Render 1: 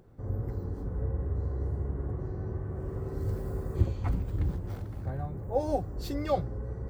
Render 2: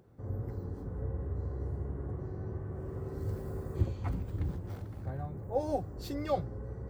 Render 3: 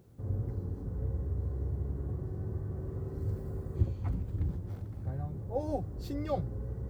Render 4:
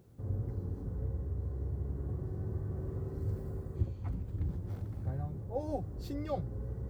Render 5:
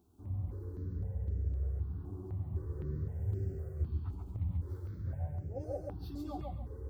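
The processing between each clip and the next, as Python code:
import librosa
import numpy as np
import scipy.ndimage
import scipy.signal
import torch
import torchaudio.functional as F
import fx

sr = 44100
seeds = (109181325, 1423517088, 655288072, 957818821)

y1 = scipy.signal.sosfilt(scipy.signal.butter(2, 62.0, 'highpass', fs=sr, output='sos'), x)
y1 = F.gain(torch.from_numpy(y1), -3.0).numpy()
y2 = fx.low_shelf(y1, sr, hz=350.0, db=8.5)
y2 = fx.rider(y2, sr, range_db=10, speed_s=2.0)
y2 = fx.quant_dither(y2, sr, seeds[0], bits=12, dither='triangular')
y2 = F.gain(torch.from_numpy(y2), -6.0).numpy()
y3 = fx.rider(y2, sr, range_db=10, speed_s=0.5)
y3 = F.gain(torch.from_numpy(y3), -2.0).numpy()
y4 = fx.chorus_voices(y3, sr, voices=2, hz=0.91, base_ms=12, depth_ms=1.7, mix_pct=45)
y4 = fx.echo_feedback(y4, sr, ms=137, feedback_pct=27, wet_db=-3)
y4 = fx.phaser_held(y4, sr, hz=3.9, low_hz=520.0, high_hz=3700.0)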